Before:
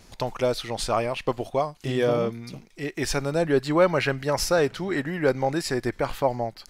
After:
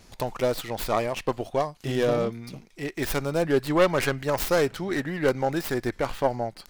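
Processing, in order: tracing distortion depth 0.36 ms; trim -1 dB

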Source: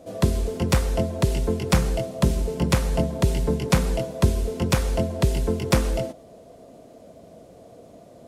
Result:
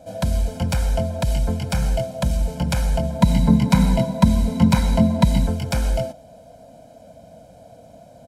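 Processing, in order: comb 1.3 ms, depth 99%; peak limiter -11 dBFS, peak gain reduction 8.5 dB; 3.21–5.47 s: small resonant body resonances 210/980/2000/3900 Hz, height 14 dB, ringing for 30 ms; trim -1 dB

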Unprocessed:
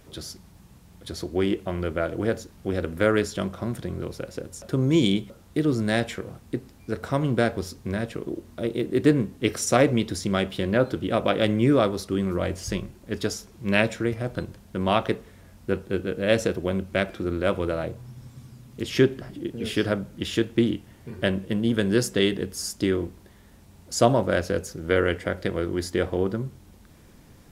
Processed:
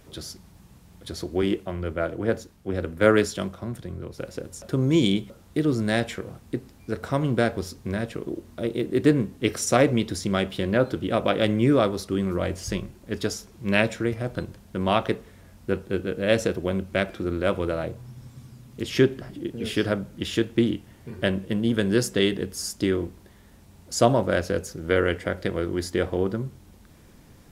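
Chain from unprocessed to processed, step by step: 1.42–4.18 s: three bands expanded up and down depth 70%

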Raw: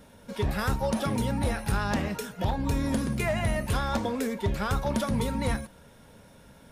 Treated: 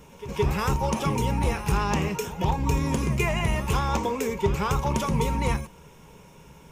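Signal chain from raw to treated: rippled EQ curve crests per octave 0.74, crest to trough 10 dB; reverse echo 169 ms -14.5 dB; trim +2.5 dB

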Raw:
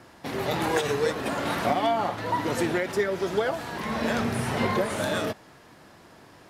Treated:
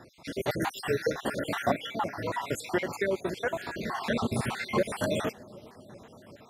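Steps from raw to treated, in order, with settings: random holes in the spectrogram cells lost 57%; on a send: bucket-brigade echo 384 ms, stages 2048, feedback 79%, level -22 dB

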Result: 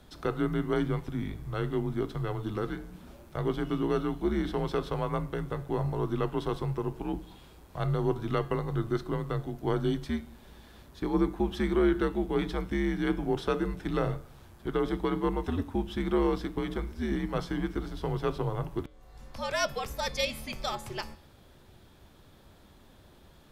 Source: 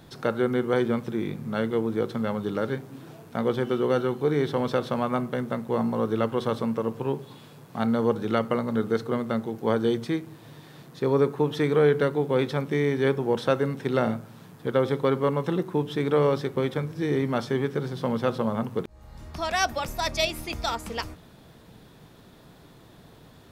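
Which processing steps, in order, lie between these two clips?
de-hum 133 Hz, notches 40; frequency shift -90 Hz; trim -4.5 dB

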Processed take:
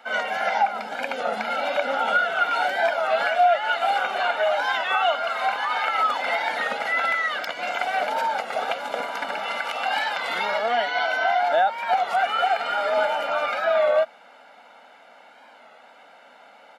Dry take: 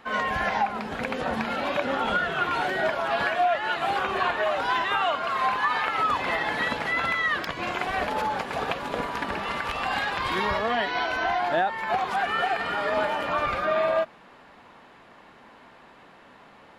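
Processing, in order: high-pass 280 Hz 24 dB/octave; comb 1.4 ms, depth 83%; warped record 33 1/3 rpm, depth 100 cents

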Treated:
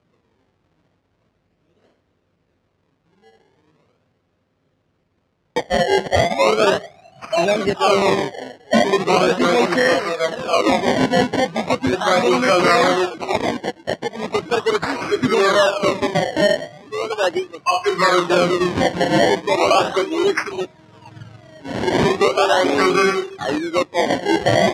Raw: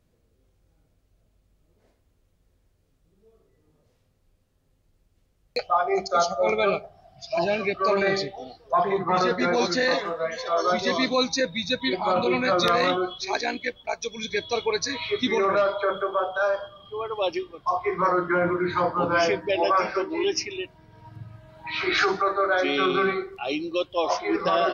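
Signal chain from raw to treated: band-stop 880 Hz, Q 12; decimation with a swept rate 24×, swing 100% 0.38 Hz; band-pass 140–5100 Hz; trim +7.5 dB

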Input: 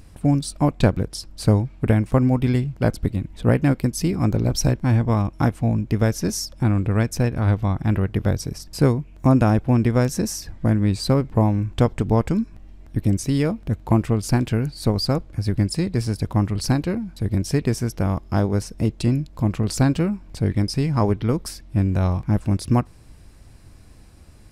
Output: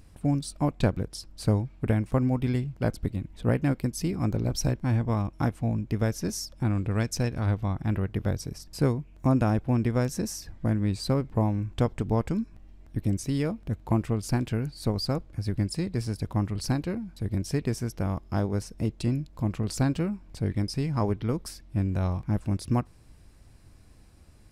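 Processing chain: 6.69–7.46 s: dynamic bell 5.3 kHz, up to +7 dB, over -47 dBFS, Q 0.78; trim -7 dB

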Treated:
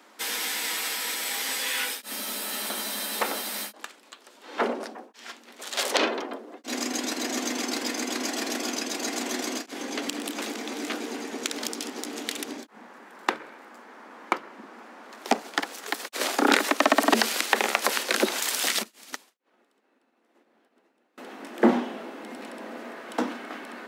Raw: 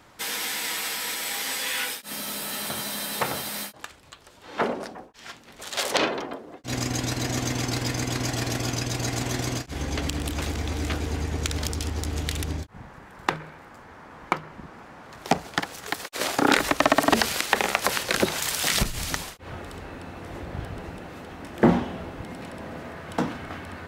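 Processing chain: Chebyshev high-pass 220 Hz, order 5; 18.66–21.18 s: upward expansion 2.5:1, over -47 dBFS

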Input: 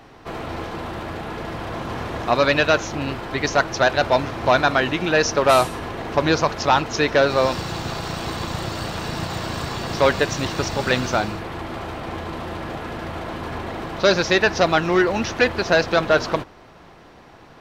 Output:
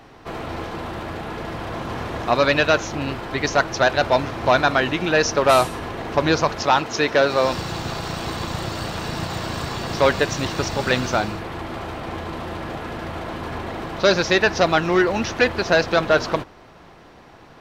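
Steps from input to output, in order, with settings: 6.63–7.47 s: high-pass 160 Hz 6 dB/octave

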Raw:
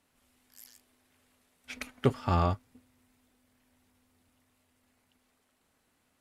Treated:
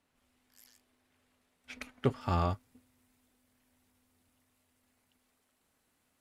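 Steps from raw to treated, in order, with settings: treble shelf 6.4 kHz -6.5 dB, from 2.21 s +4 dB; trim -3.5 dB

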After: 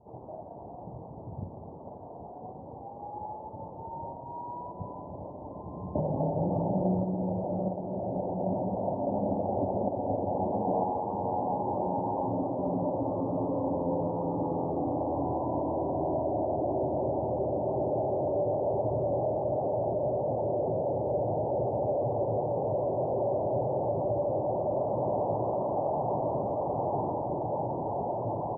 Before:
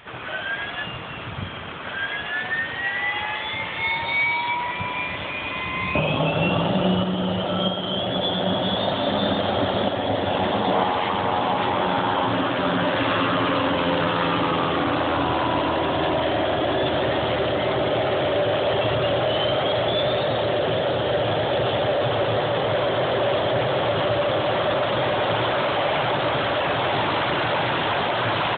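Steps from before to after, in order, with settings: steep low-pass 910 Hz 72 dB/octave; 24.67–27.13 s: frequency-shifting echo 84 ms, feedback 41%, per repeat +64 Hz, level -8 dB; trim -6.5 dB

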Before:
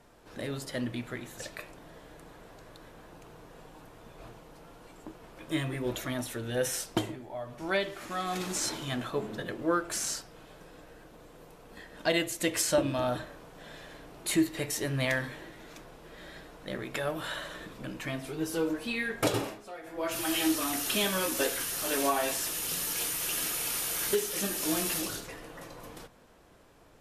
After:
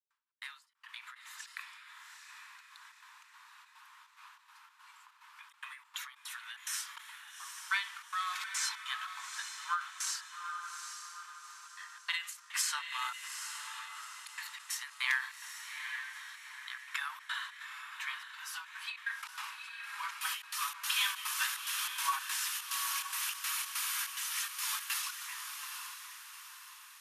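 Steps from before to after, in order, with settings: trance gate ".xx.xxx.xxx.xx" 144 bpm -60 dB; steep high-pass 960 Hz 72 dB/octave; treble shelf 5.7 kHz -7.5 dB; on a send: echo that smears into a reverb 824 ms, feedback 44%, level -7.5 dB; on the sum: endings held to a fixed fall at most 150 dB/s; trim +1.5 dB

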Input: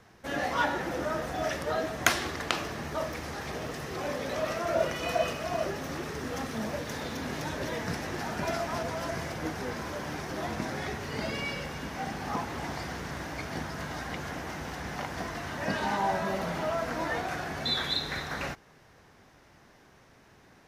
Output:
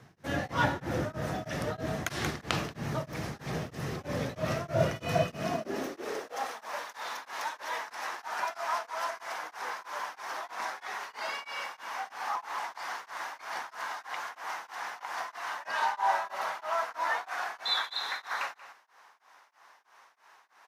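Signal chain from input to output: octave divider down 2 oct, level +4 dB; high-pass sweep 130 Hz -> 970 Hz, 5.20–6.62 s; on a send: delay 182 ms -14.5 dB; on the sum: tremolo of two beating tones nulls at 3.1 Hz

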